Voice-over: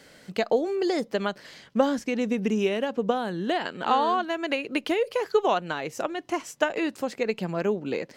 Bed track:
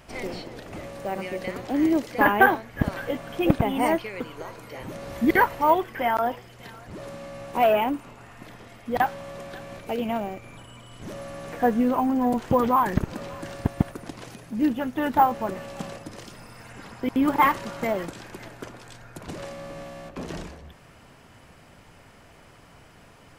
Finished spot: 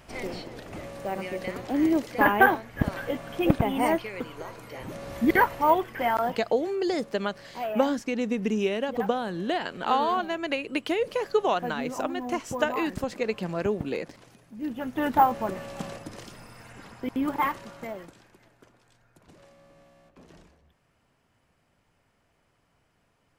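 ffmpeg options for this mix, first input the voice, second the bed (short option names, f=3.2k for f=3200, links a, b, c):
-filter_complex "[0:a]adelay=6000,volume=-1.5dB[a];[1:a]volume=10dB,afade=t=out:st=6.16:d=0.59:silence=0.281838,afade=t=in:st=14.61:d=0.41:silence=0.266073,afade=t=out:st=16.07:d=2.32:silence=0.141254[b];[a][b]amix=inputs=2:normalize=0"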